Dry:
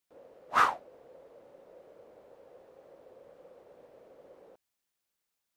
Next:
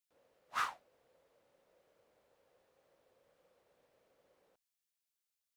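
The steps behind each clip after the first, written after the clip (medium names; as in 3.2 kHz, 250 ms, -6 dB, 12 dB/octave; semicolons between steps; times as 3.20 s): amplifier tone stack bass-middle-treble 5-5-5; trim +1 dB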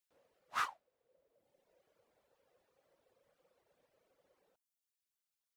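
reverb removal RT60 1.2 s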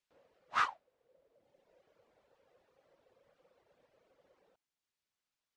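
distance through air 92 m; trim +5.5 dB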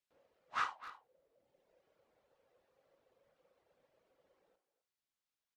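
speakerphone echo 260 ms, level -13 dB; gated-style reverb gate 90 ms flat, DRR 10 dB; trim -5 dB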